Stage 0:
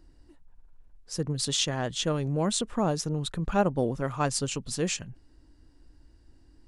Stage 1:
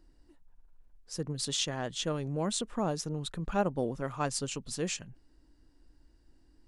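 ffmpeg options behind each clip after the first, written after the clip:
ffmpeg -i in.wav -af "equalizer=frequency=85:width_type=o:width=0.98:gain=-6.5,volume=-4.5dB" out.wav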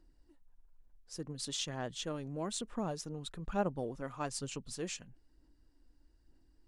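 ffmpeg -i in.wav -af "aphaser=in_gain=1:out_gain=1:delay=4.1:decay=0.29:speed=1.1:type=sinusoidal,volume=-6.5dB" out.wav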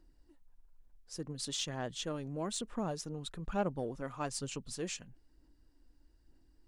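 ffmpeg -i in.wav -af "asoftclip=type=tanh:threshold=-23dB,volume=1dB" out.wav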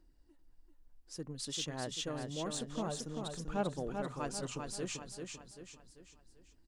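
ffmpeg -i in.wav -af "aecho=1:1:391|782|1173|1564|1955:0.562|0.247|0.109|0.0479|0.0211,volume=-2dB" out.wav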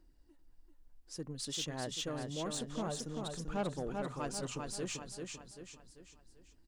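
ffmpeg -i in.wav -af "asoftclip=type=tanh:threshold=-29dB,volume=1dB" out.wav

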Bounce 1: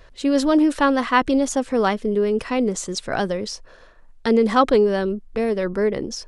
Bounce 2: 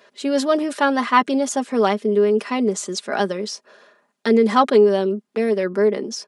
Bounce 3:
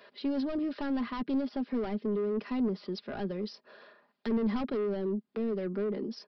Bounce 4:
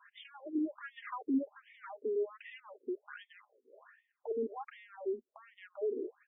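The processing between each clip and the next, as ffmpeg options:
ffmpeg -i in.wav -af "highpass=frequency=210:width=0.5412,highpass=frequency=210:width=1.3066,aecho=1:1:4.9:0.58" out.wav
ffmpeg -i in.wav -filter_complex "[0:a]aresample=11025,asoftclip=type=tanh:threshold=-18.5dB,aresample=44100,acrossover=split=330[link_01][link_02];[link_02]acompressor=threshold=-47dB:ratio=2[link_03];[link_01][link_03]amix=inputs=2:normalize=0,volume=-3dB" out.wav
ffmpeg -i in.wav -af "afftfilt=real='re*between(b*sr/1024,340*pow(2600/340,0.5+0.5*sin(2*PI*1.3*pts/sr))/1.41,340*pow(2600/340,0.5+0.5*sin(2*PI*1.3*pts/sr))*1.41)':imag='im*between(b*sr/1024,340*pow(2600/340,0.5+0.5*sin(2*PI*1.3*pts/sr))/1.41,340*pow(2600/340,0.5+0.5*sin(2*PI*1.3*pts/sr))*1.41)':win_size=1024:overlap=0.75" out.wav

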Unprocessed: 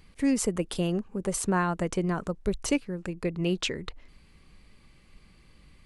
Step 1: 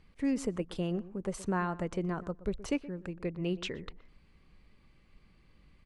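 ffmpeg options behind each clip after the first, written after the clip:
ffmpeg -i in.wav -filter_complex "[0:a]aemphasis=mode=reproduction:type=50fm,asplit=2[link_01][link_02];[link_02]adelay=122,lowpass=frequency=1200:poles=1,volume=-16dB,asplit=2[link_03][link_04];[link_04]adelay=122,lowpass=frequency=1200:poles=1,volume=0.16[link_05];[link_01][link_03][link_05]amix=inputs=3:normalize=0,volume=-6dB" out.wav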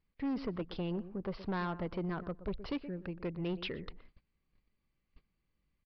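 ffmpeg -i in.wav -af "aresample=11025,asoftclip=type=tanh:threshold=-30.5dB,aresample=44100,agate=range=-19dB:threshold=-54dB:ratio=16:detection=peak" out.wav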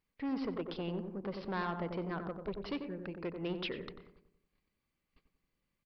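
ffmpeg -i in.wav -filter_complex "[0:a]lowshelf=frequency=160:gain=-11.5,asplit=2[link_01][link_02];[link_02]adelay=92,lowpass=frequency=950:poles=1,volume=-5dB,asplit=2[link_03][link_04];[link_04]adelay=92,lowpass=frequency=950:poles=1,volume=0.54,asplit=2[link_05][link_06];[link_06]adelay=92,lowpass=frequency=950:poles=1,volume=0.54,asplit=2[link_07][link_08];[link_08]adelay=92,lowpass=frequency=950:poles=1,volume=0.54,asplit=2[link_09][link_10];[link_10]adelay=92,lowpass=frequency=950:poles=1,volume=0.54,asplit=2[link_11][link_12];[link_12]adelay=92,lowpass=frequency=950:poles=1,volume=0.54,asplit=2[link_13][link_14];[link_14]adelay=92,lowpass=frequency=950:poles=1,volume=0.54[link_15];[link_01][link_03][link_05][link_07][link_09][link_11][link_13][link_15]amix=inputs=8:normalize=0,volume=1dB" out.wav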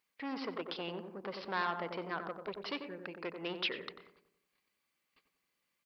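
ffmpeg -i in.wav -af "highpass=frequency=960:poles=1,volume=6dB" out.wav

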